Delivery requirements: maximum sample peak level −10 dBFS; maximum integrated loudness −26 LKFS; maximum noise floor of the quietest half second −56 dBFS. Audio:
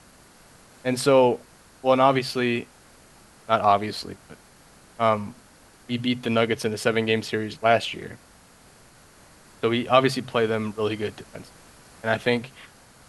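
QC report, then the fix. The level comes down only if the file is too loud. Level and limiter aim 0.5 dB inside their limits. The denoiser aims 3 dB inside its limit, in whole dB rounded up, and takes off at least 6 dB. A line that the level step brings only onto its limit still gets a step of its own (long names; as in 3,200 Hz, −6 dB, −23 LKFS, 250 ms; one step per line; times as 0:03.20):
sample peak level −3.0 dBFS: out of spec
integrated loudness −23.5 LKFS: out of spec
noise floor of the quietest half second −53 dBFS: out of spec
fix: broadband denoise 6 dB, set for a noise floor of −53 dBFS
level −3 dB
brickwall limiter −10.5 dBFS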